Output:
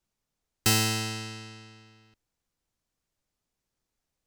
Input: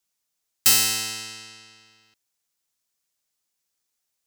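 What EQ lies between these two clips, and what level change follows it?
tilt -3.5 dB/oct; +1.5 dB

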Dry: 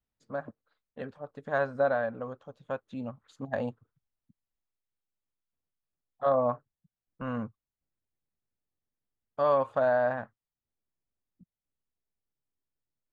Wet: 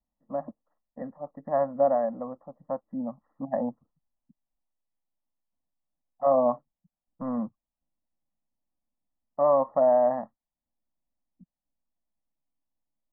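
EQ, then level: brick-wall FIR low-pass 2000 Hz; fixed phaser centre 410 Hz, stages 6; +5.5 dB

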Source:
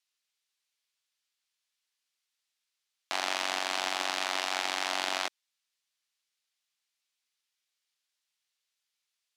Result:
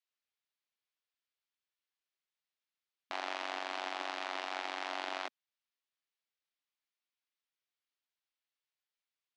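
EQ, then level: brick-wall FIR high-pass 240 Hz; tape spacing loss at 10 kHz 21 dB; -3.5 dB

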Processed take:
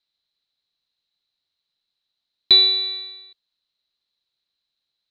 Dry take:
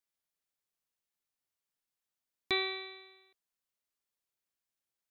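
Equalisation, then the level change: dynamic EQ 1600 Hz, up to -8 dB, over -47 dBFS, Q 0.76; synth low-pass 4000 Hz, resonance Q 16; low shelf 230 Hz +3.5 dB; +3.5 dB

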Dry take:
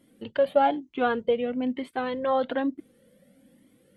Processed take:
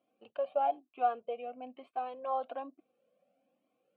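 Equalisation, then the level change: vowel filter a; notch 3400 Hz, Q 18; 0.0 dB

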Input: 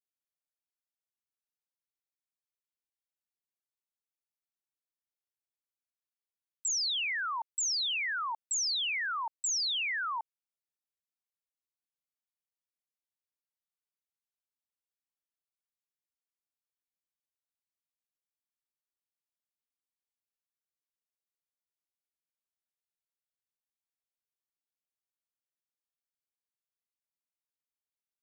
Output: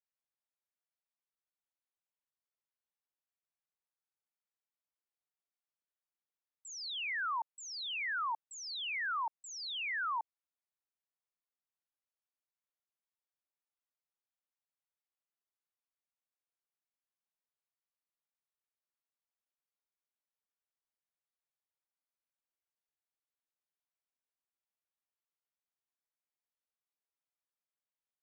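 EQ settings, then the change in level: HPF 600 Hz; LPF 1200 Hz 6 dB/oct; air absorption 55 m; +2.5 dB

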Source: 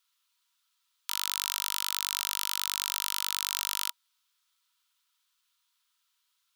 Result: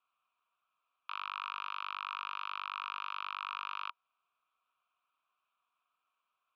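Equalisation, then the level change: vowel filter a; air absorption 310 m; tilt -4 dB/oct; +18.0 dB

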